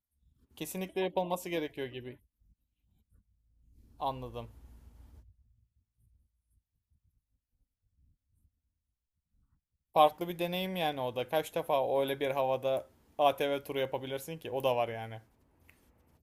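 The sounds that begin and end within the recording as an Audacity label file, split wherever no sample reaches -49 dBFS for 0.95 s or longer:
4.000000	5.200000	sound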